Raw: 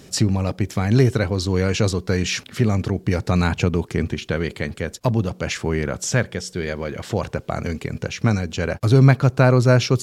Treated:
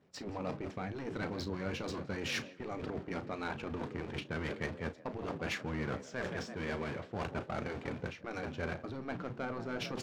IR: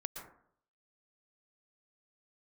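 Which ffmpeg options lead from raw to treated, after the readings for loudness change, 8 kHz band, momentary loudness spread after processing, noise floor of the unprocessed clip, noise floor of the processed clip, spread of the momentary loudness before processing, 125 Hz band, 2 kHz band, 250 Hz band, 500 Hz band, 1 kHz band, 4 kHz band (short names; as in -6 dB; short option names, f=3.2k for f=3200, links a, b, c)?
-18.5 dB, -22.0 dB, 4 LU, -47 dBFS, -53 dBFS, 11 LU, -25.0 dB, -13.5 dB, -18.0 dB, -17.5 dB, -13.5 dB, -15.5 dB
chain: -filter_complex "[0:a]aeval=exprs='val(0)+0.5*0.0335*sgn(val(0))':c=same,agate=range=-33dB:threshold=-19dB:ratio=3:detection=peak,highpass=f=130:p=1,asplit=5[a][b][c][d][e];[b]adelay=169,afreqshift=47,volume=-18dB[f];[c]adelay=338,afreqshift=94,volume=-25.1dB[g];[d]adelay=507,afreqshift=141,volume=-32.3dB[h];[e]adelay=676,afreqshift=188,volume=-39.4dB[i];[a][f][g][h][i]amix=inputs=5:normalize=0,areverse,acompressor=threshold=-30dB:ratio=8,areverse,asoftclip=type=tanh:threshold=-25.5dB,adynamicsmooth=sensitivity=4:basefreq=2.3k,asplit=2[j][k];[k]adelay=35,volume=-13dB[l];[j][l]amix=inputs=2:normalize=0,afftfilt=real='re*lt(hypot(re,im),0.112)':imag='im*lt(hypot(re,im),0.112)':win_size=1024:overlap=0.75,volume=1dB"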